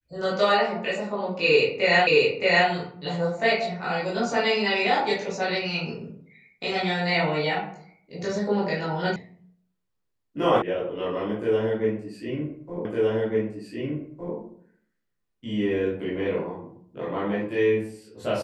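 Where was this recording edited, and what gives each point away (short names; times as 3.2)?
2.07 repeat of the last 0.62 s
9.16 sound cut off
10.62 sound cut off
12.85 repeat of the last 1.51 s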